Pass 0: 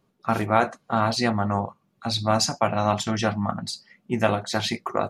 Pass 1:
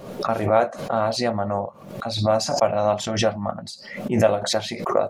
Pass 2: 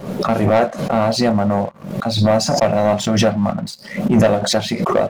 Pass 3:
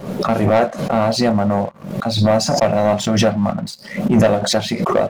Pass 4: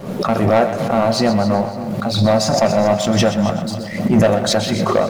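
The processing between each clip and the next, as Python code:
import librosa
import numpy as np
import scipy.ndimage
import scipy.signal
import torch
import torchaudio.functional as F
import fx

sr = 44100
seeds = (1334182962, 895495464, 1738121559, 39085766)

y1 = fx.peak_eq(x, sr, hz=570.0, db=13.0, octaves=0.64)
y1 = fx.pre_swell(y1, sr, db_per_s=71.0)
y1 = y1 * 10.0 ** (-5.0 / 20.0)
y2 = fx.peak_eq(y1, sr, hz=180.0, db=8.5, octaves=1.3)
y2 = fx.leveller(y2, sr, passes=2)
y2 = y2 * 10.0 ** (-2.0 / 20.0)
y3 = y2
y4 = fx.echo_split(y3, sr, split_hz=410.0, low_ms=566, high_ms=126, feedback_pct=52, wet_db=-11)
y4 = fx.echo_crushed(y4, sr, ms=279, feedback_pct=35, bits=7, wet_db=-14.0)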